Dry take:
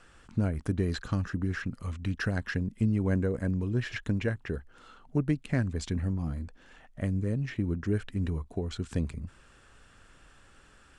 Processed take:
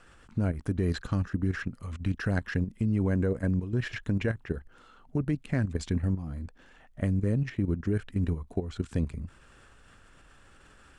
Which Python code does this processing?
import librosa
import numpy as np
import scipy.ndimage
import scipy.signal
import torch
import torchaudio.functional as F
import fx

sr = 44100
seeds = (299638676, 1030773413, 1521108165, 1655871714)

y = fx.peak_eq(x, sr, hz=5600.0, db=-2.5, octaves=1.9)
y = fx.level_steps(y, sr, step_db=10)
y = y * librosa.db_to_amplitude(4.5)